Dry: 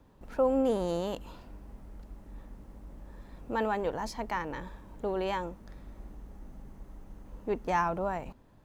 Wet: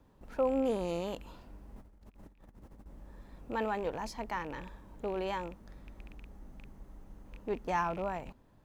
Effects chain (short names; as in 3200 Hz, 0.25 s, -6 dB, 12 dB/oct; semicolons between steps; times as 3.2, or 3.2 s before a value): rattling part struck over -40 dBFS, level -37 dBFS; 1.76–2.86 negative-ratio compressor -50 dBFS, ratio -0.5; gain -3.5 dB